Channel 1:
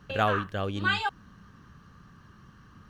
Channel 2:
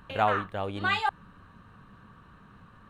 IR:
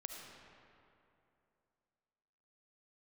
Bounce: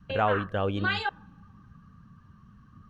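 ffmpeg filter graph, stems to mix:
-filter_complex "[0:a]alimiter=limit=0.075:level=0:latency=1:release=15,volume=0.944,asplit=2[s0][s1];[s1]volume=0.119[s2];[1:a]volume=0.596[s3];[2:a]atrim=start_sample=2205[s4];[s2][s4]afir=irnorm=-1:irlink=0[s5];[s0][s3][s5]amix=inputs=3:normalize=0,adynamicequalizer=threshold=0.00708:dfrequency=500:dqfactor=4.2:tfrequency=500:tqfactor=4.2:attack=5:release=100:ratio=0.375:range=2:mode=boostabove:tftype=bell,afftdn=nr=12:nf=-47"

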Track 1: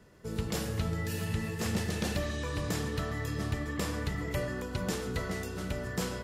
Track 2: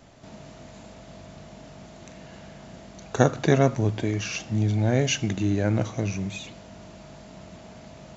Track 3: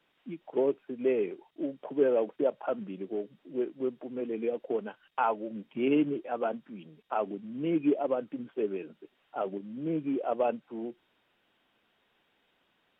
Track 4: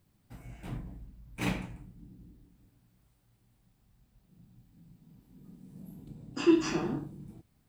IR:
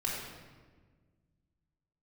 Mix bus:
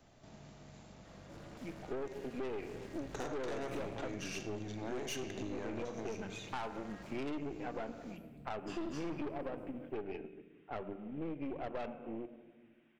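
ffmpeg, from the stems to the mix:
-filter_complex "[0:a]alimiter=level_in=2.11:limit=0.0631:level=0:latency=1,volume=0.473,asplit=2[s0][s1];[s1]highpass=f=720:p=1,volume=28.2,asoftclip=type=tanh:threshold=0.0316[s2];[s0][s2]amix=inputs=2:normalize=0,lowpass=f=1400:p=1,volume=0.501,aeval=exprs='val(0)*sin(2*PI*120*n/s)':c=same,adelay=1050,volume=0.376[s3];[1:a]acrossover=split=230|3000[s4][s5][s6];[s4]acompressor=threshold=0.0112:ratio=6[s7];[s7][s5][s6]amix=inputs=3:normalize=0,volume=0.335,asplit=3[s8][s9][s10];[s9]volume=0.335[s11];[2:a]lowpass=f=2300:t=q:w=2.8,lowshelf=f=190:g=8.5,adelay=1350,volume=0.531,asplit=2[s12][s13];[s13]volume=0.2[s14];[3:a]adelay=2300,volume=0.316,asplit=2[s15][s16];[s16]volume=0.422[s17];[s10]apad=whole_len=321256[s18];[s3][s18]sidechaincompress=threshold=0.00355:ratio=8:attack=16:release=338[s19];[4:a]atrim=start_sample=2205[s20];[s11][s14][s17]amix=inputs=3:normalize=0[s21];[s21][s20]afir=irnorm=-1:irlink=0[s22];[s19][s8][s12][s15][s22]amix=inputs=5:normalize=0,aeval=exprs='(tanh(35.5*val(0)+0.7)-tanh(0.7))/35.5':c=same,acompressor=threshold=0.0141:ratio=3"

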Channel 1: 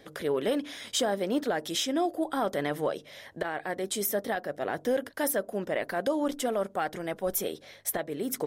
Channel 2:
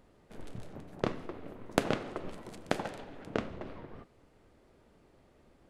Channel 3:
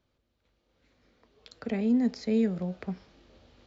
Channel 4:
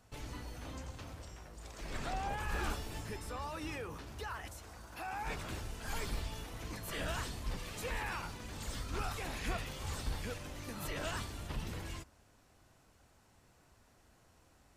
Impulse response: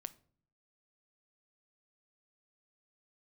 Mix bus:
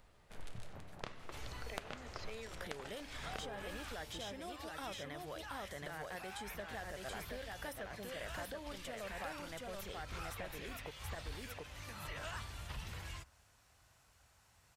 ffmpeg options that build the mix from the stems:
-filter_complex "[0:a]lowshelf=f=380:g=10.5,adelay=2450,volume=0.596,asplit=2[s0][s1];[s1]volume=0.668[s2];[1:a]volume=1.26[s3];[2:a]highpass=f=320:w=0.5412,highpass=f=320:w=1.3066,volume=0.708[s4];[3:a]highpass=47,adelay=1200,volume=1.19[s5];[s2]aecho=0:1:727:1[s6];[s0][s3][s4][s5][s6]amix=inputs=5:normalize=0,acrossover=split=1800|3900[s7][s8][s9];[s7]acompressor=threshold=0.0141:ratio=4[s10];[s8]acompressor=threshold=0.00251:ratio=4[s11];[s9]acompressor=threshold=0.00126:ratio=4[s12];[s10][s11][s12]amix=inputs=3:normalize=0,equalizer=f=290:t=o:w=2.1:g=-14"

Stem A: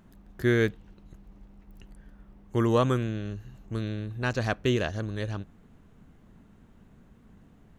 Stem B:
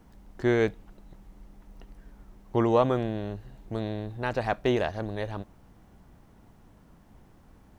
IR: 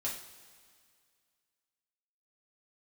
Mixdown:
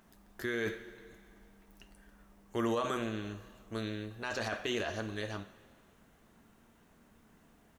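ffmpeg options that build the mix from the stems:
-filter_complex "[0:a]highpass=f=620:p=1,volume=0.75,asplit=2[s0][s1];[s1]volume=0.501[s2];[1:a]bass=f=250:g=1,treble=f=4000:g=15,adelay=9.1,volume=0.168[s3];[2:a]atrim=start_sample=2205[s4];[s2][s4]afir=irnorm=-1:irlink=0[s5];[s0][s3][s5]amix=inputs=3:normalize=0,alimiter=limit=0.0668:level=0:latency=1:release=19"

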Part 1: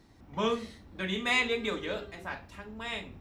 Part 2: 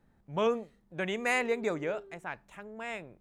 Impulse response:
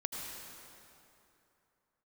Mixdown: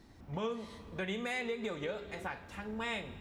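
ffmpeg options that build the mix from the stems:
-filter_complex "[0:a]acompressor=threshold=0.0126:ratio=2.5,volume=0.794,asplit=2[s0][s1];[s1]volume=0.316[s2];[1:a]acompressor=threshold=0.0355:ratio=6,volume=0.944[s3];[2:a]atrim=start_sample=2205[s4];[s2][s4]afir=irnorm=-1:irlink=0[s5];[s0][s3][s5]amix=inputs=3:normalize=0,alimiter=level_in=1.41:limit=0.0631:level=0:latency=1:release=282,volume=0.708"

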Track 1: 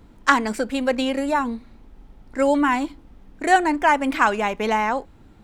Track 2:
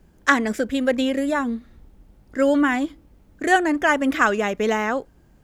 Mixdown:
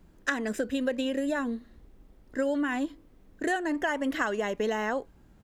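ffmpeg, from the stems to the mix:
-filter_complex "[0:a]flanger=delay=1.9:depth=5.3:regen=-84:speed=0.67:shape=sinusoidal,volume=0.422[s0];[1:a]volume=-1,adelay=1,volume=0.531[s1];[s0][s1]amix=inputs=2:normalize=0,acompressor=threshold=0.0562:ratio=6"

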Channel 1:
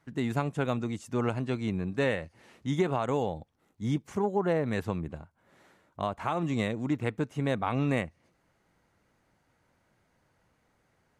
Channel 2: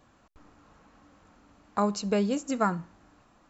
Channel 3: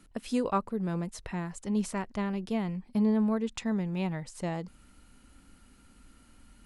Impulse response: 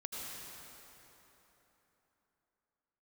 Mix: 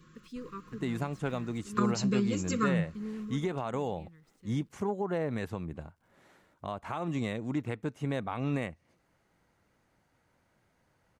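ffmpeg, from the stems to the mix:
-filter_complex "[0:a]alimiter=limit=0.0841:level=0:latency=1:release=279,adelay=650,volume=0.891[s0];[1:a]equalizer=f=160:t=o:w=0.23:g=13.5,aecho=1:1:5.6:0.67,volume=1.12[s1];[2:a]lowpass=6300,aeval=exprs='val(0)*gte(abs(val(0)),0.00316)':c=same,volume=0.224,afade=t=out:st=3.29:d=0.2:silence=0.375837[s2];[s1][s2]amix=inputs=2:normalize=0,asuperstop=centerf=720:order=12:qfactor=1.4,acompressor=threshold=0.0501:ratio=6,volume=1[s3];[s0][s3]amix=inputs=2:normalize=0"

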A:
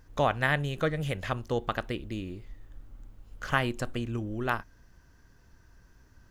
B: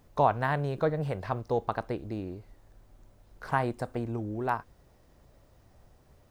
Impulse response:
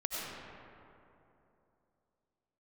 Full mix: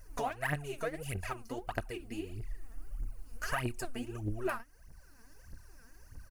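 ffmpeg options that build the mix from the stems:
-filter_complex "[0:a]volume=0.708[s0];[1:a]lowshelf=f=380:g=-9.5,acompressor=threshold=0.0141:ratio=2.5,adelay=3.6,volume=0.282,asplit=2[s1][s2];[s2]apad=whole_len=277896[s3];[s0][s3]sidechaincompress=threshold=0.002:ratio=8:attack=45:release=861[s4];[s4][s1]amix=inputs=2:normalize=0,superequalizer=13b=0.282:16b=2.24,aphaser=in_gain=1:out_gain=1:delay=4.6:decay=0.78:speed=1.6:type=triangular,highshelf=f=5100:g=7"

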